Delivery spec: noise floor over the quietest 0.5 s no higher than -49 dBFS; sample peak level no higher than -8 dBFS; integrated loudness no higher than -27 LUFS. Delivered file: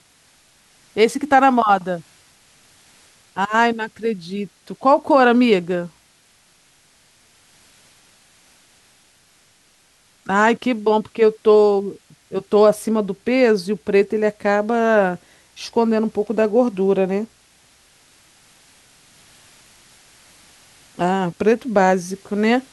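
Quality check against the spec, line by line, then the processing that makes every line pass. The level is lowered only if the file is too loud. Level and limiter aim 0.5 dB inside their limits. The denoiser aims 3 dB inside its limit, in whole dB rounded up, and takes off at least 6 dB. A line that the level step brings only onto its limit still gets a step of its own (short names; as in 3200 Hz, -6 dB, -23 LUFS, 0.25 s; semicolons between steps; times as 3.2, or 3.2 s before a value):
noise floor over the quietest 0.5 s -56 dBFS: OK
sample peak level -3.0 dBFS: fail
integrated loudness -18.0 LUFS: fail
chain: gain -9.5 dB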